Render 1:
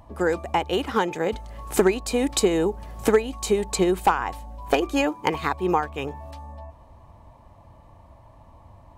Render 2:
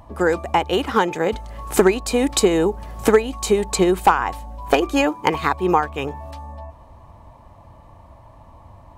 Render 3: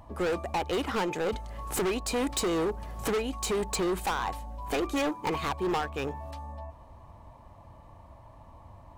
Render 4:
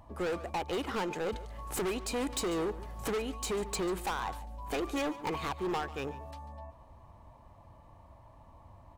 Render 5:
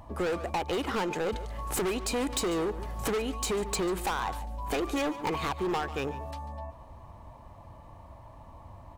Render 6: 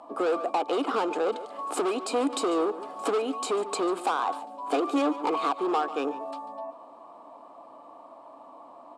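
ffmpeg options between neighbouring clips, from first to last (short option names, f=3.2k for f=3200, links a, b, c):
-af "equalizer=f=1.2k:w=1.5:g=2,volume=4dB"
-af "asoftclip=type=hard:threshold=-20dB,volume=-5.5dB"
-af "aecho=1:1:143:0.141,volume=-4.5dB"
-af "acompressor=threshold=-34dB:ratio=6,volume=6.5dB"
-af "highpass=f=280:w=0.5412,highpass=f=280:w=1.3066,equalizer=f=280:t=q:w=4:g=9,equalizer=f=470:t=q:w=4:g=4,equalizer=f=700:t=q:w=4:g=8,equalizer=f=1.2k:t=q:w=4:g=9,equalizer=f=1.9k:t=q:w=4:g=-9,equalizer=f=6.1k:t=q:w=4:g=-8,lowpass=f=9.2k:w=0.5412,lowpass=f=9.2k:w=1.3066"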